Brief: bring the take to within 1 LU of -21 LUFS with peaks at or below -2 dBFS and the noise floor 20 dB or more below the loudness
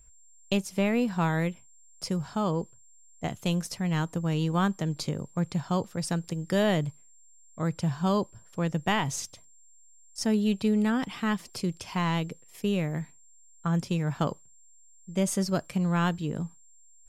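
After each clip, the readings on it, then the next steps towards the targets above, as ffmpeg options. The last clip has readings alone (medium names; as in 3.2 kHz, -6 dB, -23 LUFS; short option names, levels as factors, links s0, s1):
steady tone 7.4 kHz; tone level -57 dBFS; loudness -29.5 LUFS; peak level -13.5 dBFS; loudness target -21.0 LUFS
-> -af "bandreject=f=7400:w=30"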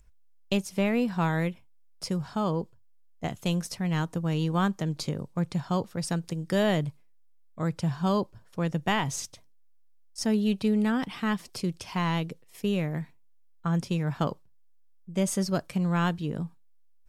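steady tone not found; loudness -29.0 LUFS; peak level -13.5 dBFS; loudness target -21.0 LUFS
-> -af "volume=2.51"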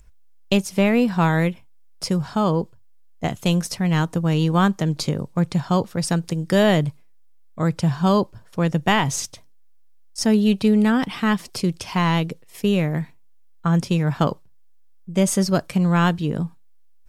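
loudness -21.5 LUFS; peak level -5.5 dBFS; noise floor -48 dBFS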